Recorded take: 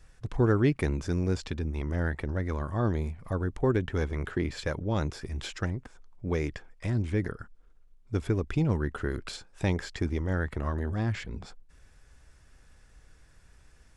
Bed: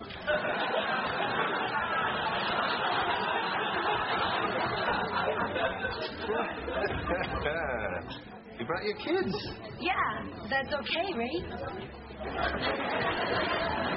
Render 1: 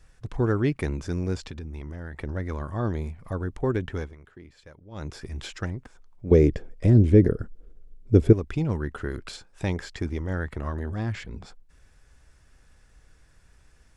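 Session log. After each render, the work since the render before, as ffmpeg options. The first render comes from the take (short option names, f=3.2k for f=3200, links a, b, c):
-filter_complex "[0:a]asettb=1/sr,asplit=3[a][b][c];[a]atrim=end=1.404[d];[b]atrim=start=1.4:end=2.2,asetpts=PTS-STARTPTS,afade=t=in:d=0.004:c=qsin,afade=t=out:st=0.796:d=0.004:c=qsin,acompressor=threshold=-32dB:ratio=6:attack=3.2:release=140:knee=1:detection=peak[e];[c]atrim=start=2.196[f];[d][e]acrossfade=d=0.004:c1=hsin:c2=qsin[g];[g][f]acrossfade=d=0.004:c1=qsin:c2=hsin,asettb=1/sr,asplit=3[h][i][j];[h]atrim=end=6.314[k];[i]atrim=start=6.31:end=8.33,asetpts=PTS-STARTPTS,afade=t=in:d=0.004:c=qsin,afade=t=out:st=2.016:d=0.004:c=qsin,lowshelf=f=680:t=q:w=1.5:g=11.5[l];[j]atrim=start=8.326[m];[k][l]acrossfade=d=0.004:c1=hsin:c2=qsin[n];[n][m]acrossfade=d=0.004:c1=qsin:c2=hsin,asplit=3[o][p][q];[o]atrim=end=4.16,asetpts=PTS-STARTPTS,afade=t=out:st=3.92:d=0.24:silence=0.133352[r];[p]atrim=start=4.16:end=4.91,asetpts=PTS-STARTPTS,volume=-17.5dB[s];[q]atrim=start=4.91,asetpts=PTS-STARTPTS,afade=t=in:d=0.24:silence=0.133352[t];[r][s][t]concat=n=3:v=0:a=1"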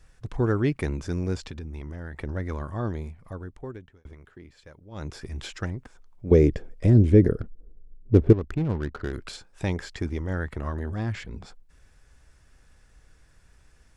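-filter_complex "[0:a]asettb=1/sr,asplit=3[a][b][c];[a]atrim=end=7.404[d];[b]atrim=start=7.4:end=9.13,asetpts=PTS-STARTPTS,afade=t=in:d=0.004:c=qsin,afade=t=out:st=1.726:d=0.004:c=qsin,adynamicsmooth=sensitivity=5.5:basefreq=550[e];[c]atrim=start=9.126[f];[d][e]acrossfade=d=0.004:c1=hsin:c2=qsin[g];[g][f]acrossfade=d=0.004:c1=qsin:c2=hsin,asplit=2[h][i];[h]atrim=end=4.05,asetpts=PTS-STARTPTS,afade=t=out:st=2.53:d=1.52[j];[i]atrim=start=4.05,asetpts=PTS-STARTPTS,afade=t=in:d=0.004:c=hsin[k];[j][k]concat=n=2:v=0:a=1"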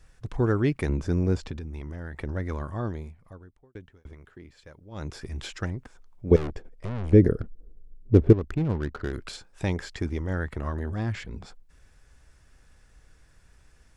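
-filter_complex "[0:a]asettb=1/sr,asplit=3[a][b][c];[a]atrim=end=0.894[d];[b]atrim=start=0.89:end=1.57,asetpts=PTS-STARTPTS,afade=t=in:d=0.004:c=qsin,afade=t=out:st=0.676:d=0.004:c=qsin,tiltshelf=f=1.4k:g=4[e];[c]atrim=start=1.566[f];[d][e]acrossfade=d=0.004:c1=hsin:c2=qsin[g];[g][f]acrossfade=d=0.004:c1=qsin:c2=hsin,asettb=1/sr,asplit=3[h][i][j];[h]atrim=end=6.364[k];[i]atrim=start=6.36:end=7.13,asetpts=PTS-STARTPTS,afade=t=in:d=0.004:c=qsin,afade=t=out:st=0.766:d=0.004:c=qsin,aeval=exprs='(tanh(31.6*val(0)+0.8)-tanh(0.8))/31.6':c=same[l];[j]atrim=start=7.126[m];[k][l]acrossfade=d=0.004:c1=hsin:c2=qsin[n];[n][m]acrossfade=d=0.004:c1=qsin:c2=hsin,asplit=2[o][p];[o]atrim=end=3.75,asetpts=PTS-STARTPTS,afade=t=out:st=2.67:d=1.08[q];[p]atrim=start=3.75,asetpts=PTS-STARTPTS,afade=t=in:d=0.004:c=hsin[r];[q][r]concat=n=2:v=0:a=1"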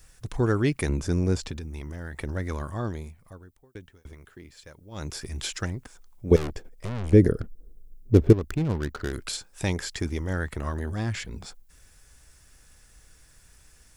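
-af "aemphasis=mode=production:type=75kf"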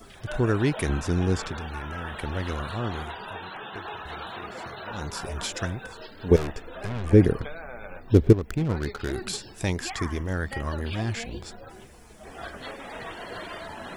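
-filter_complex "[1:a]volume=-8dB[a];[0:a][a]amix=inputs=2:normalize=0"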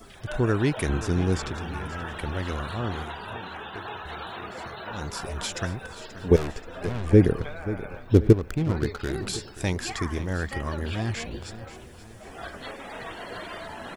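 -af "aecho=1:1:531|1062|1593|2124:0.188|0.081|0.0348|0.015"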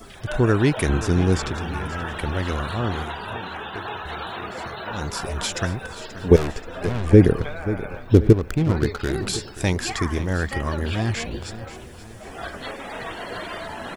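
-af "volume=5dB,alimiter=limit=-2dB:level=0:latency=1"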